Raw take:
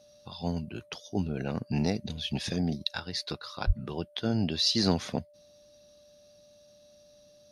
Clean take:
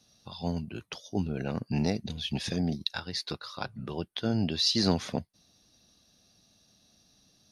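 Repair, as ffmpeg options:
-filter_complex "[0:a]bandreject=f=590:w=30,asplit=3[a][b][c];[a]afade=t=out:st=3.66:d=0.02[d];[b]highpass=f=140:w=0.5412,highpass=f=140:w=1.3066,afade=t=in:st=3.66:d=0.02,afade=t=out:st=3.78:d=0.02[e];[c]afade=t=in:st=3.78:d=0.02[f];[d][e][f]amix=inputs=3:normalize=0"

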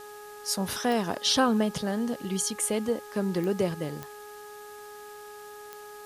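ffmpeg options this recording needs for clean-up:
-af "adeclick=t=4,bandreject=f=416.8:t=h:w=4,bandreject=f=833.6:t=h:w=4,bandreject=f=1.2504k:t=h:w=4,bandreject=f=1.6672k:t=h:w=4,afwtdn=0.0025"

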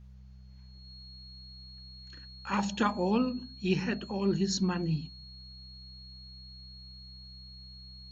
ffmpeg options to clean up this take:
-af "bandreject=f=64:t=h:w=4,bandreject=f=128:t=h:w=4,bandreject=f=192:t=h:w=4,bandreject=f=4.3k:w=30,agate=range=-21dB:threshold=-42dB"

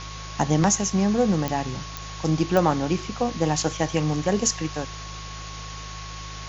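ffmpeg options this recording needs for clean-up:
-af "adeclick=t=4,bandreject=f=52.4:t=h:w=4,bandreject=f=104.8:t=h:w=4,bandreject=f=157.2:t=h:w=4,bandreject=f=1.1k:w=30,afftdn=nr=30:nf=-36"

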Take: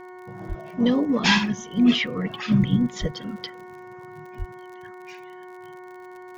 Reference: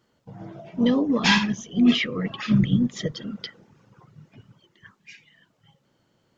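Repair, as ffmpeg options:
-filter_complex "[0:a]adeclick=t=4,bandreject=f=365.3:t=h:w=4,bandreject=f=730.6:t=h:w=4,bandreject=f=1.0959k:t=h:w=4,bandreject=f=1.4612k:t=h:w=4,bandreject=f=1.8265k:t=h:w=4,bandreject=f=2.1918k:t=h:w=4,bandreject=f=940:w=30,asplit=3[a][b][c];[a]afade=t=out:st=0.48:d=0.02[d];[b]highpass=f=140:w=0.5412,highpass=f=140:w=1.3066,afade=t=in:st=0.48:d=0.02,afade=t=out:st=0.6:d=0.02[e];[c]afade=t=in:st=0.6:d=0.02[f];[d][e][f]amix=inputs=3:normalize=0,asplit=3[g][h][i];[g]afade=t=out:st=3:d=0.02[j];[h]highpass=f=140:w=0.5412,highpass=f=140:w=1.3066,afade=t=in:st=3:d=0.02,afade=t=out:st=3.12:d=0.02[k];[i]afade=t=in:st=3.12:d=0.02[l];[j][k][l]amix=inputs=3:normalize=0,asplit=3[m][n][o];[m]afade=t=out:st=4.38:d=0.02[p];[n]highpass=f=140:w=0.5412,highpass=f=140:w=1.3066,afade=t=in:st=4.38:d=0.02,afade=t=out:st=4.5:d=0.02[q];[o]afade=t=in:st=4.5:d=0.02[r];[p][q][r]amix=inputs=3:normalize=0"

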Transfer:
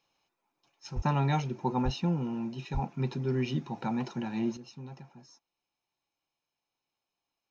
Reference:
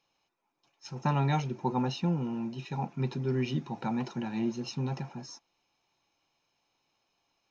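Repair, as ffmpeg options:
-filter_complex "[0:a]asplit=3[a][b][c];[a]afade=t=out:st=0.95:d=0.02[d];[b]highpass=f=140:w=0.5412,highpass=f=140:w=1.3066,afade=t=in:st=0.95:d=0.02,afade=t=out:st=1.07:d=0.02[e];[c]afade=t=in:st=1.07:d=0.02[f];[d][e][f]amix=inputs=3:normalize=0,asplit=3[g][h][i];[g]afade=t=out:st=1.84:d=0.02[j];[h]highpass=f=140:w=0.5412,highpass=f=140:w=1.3066,afade=t=in:st=1.84:d=0.02,afade=t=out:st=1.96:d=0.02[k];[i]afade=t=in:st=1.96:d=0.02[l];[j][k][l]amix=inputs=3:normalize=0,asplit=3[m][n][o];[m]afade=t=out:st=2.73:d=0.02[p];[n]highpass=f=140:w=0.5412,highpass=f=140:w=1.3066,afade=t=in:st=2.73:d=0.02,afade=t=out:st=2.85:d=0.02[q];[o]afade=t=in:st=2.85:d=0.02[r];[p][q][r]amix=inputs=3:normalize=0,asetnsamples=n=441:p=0,asendcmd='4.57 volume volume 11.5dB',volume=0dB"

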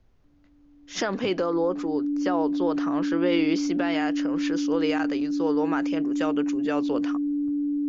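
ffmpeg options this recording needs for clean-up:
-af "bandreject=f=290:w=30,agate=range=-21dB:threshold=-45dB"

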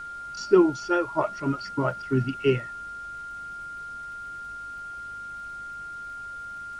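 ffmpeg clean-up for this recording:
-af "adeclick=t=4,bandreject=f=50.2:t=h:w=4,bandreject=f=100.4:t=h:w=4,bandreject=f=150.6:t=h:w=4,bandreject=f=200.8:t=h:w=4,bandreject=f=251:t=h:w=4,bandreject=f=1.4k:w=30,agate=range=-21dB:threshold=-30dB"

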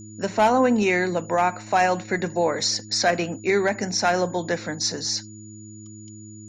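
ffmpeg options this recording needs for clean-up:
-af "bandreject=f=106.7:t=h:w=4,bandreject=f=213.4:t=h:w=4,bandreject=f=320.1:t=h:w=4,bandreject=f=6.9k:w=30"

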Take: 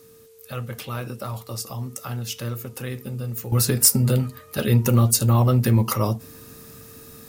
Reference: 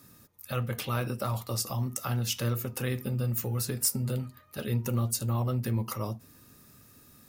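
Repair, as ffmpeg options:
-af "bandreject=f=450:w=30,agate=range=-21dB:threshold=-37dB,asetnsamples=n=441:p=0,asendcmd='3.52 volume volume -11.5dB',volume=0dB"

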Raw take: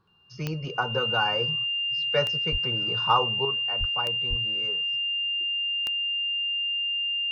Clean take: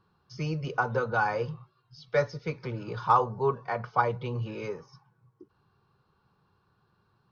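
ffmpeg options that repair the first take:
-filter_complex "[0:a]adeclick=t=4,bandreject=f=2.8k:w=30,asplit=3[a][b][c];[a]afade=t=out:st=2.51:d=0.02[d];[b]highpass=f=140:w=0.5412,highpass=f=140:w=1.3066,afade=t=in:st=2.51:d=0.02,afade=t=out:st=2.63:d=0.02[e];[c]afade=t=in:st=2.63:d=0.02[f];[d][e][f]amix=inputs=3:normalize=0,asplit=3[g][h][i];[g]afade=t=out:st=3.79:d=0.02[j];[h]highpass=f=140:w=0.5412,highpass=f=140:w=1.3066,afade=t=in:st=3.79:d=0.02,afade=t=out:st=3.91:d=0.02[k];[i]afade=t=in:st=3.91:d=0.02[l];[j][k][l]amix=inputs=3:normalize=0,asplit=3[m][n][o];[m]afade=t=out:st=4.29:d=0.02[p];[n]highpass=f=140:w=0.5412,highpass=f=140:w=1.3066,afade=t=in:st=4.29:d=0.02,afade=t=out:st=4.41:d=0.02[q];[o]afade=t=in:st=4.41:d=0.02[r];[p][q][r]amix=inputs=3:normalize=0,asetnsamples=n=441:p=0,asendcmd='3.45 volume volume 8dB',volume=0dB"

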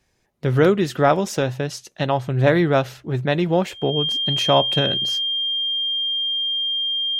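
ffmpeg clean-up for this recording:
-af "bandreject=f=3.2k:w=30"

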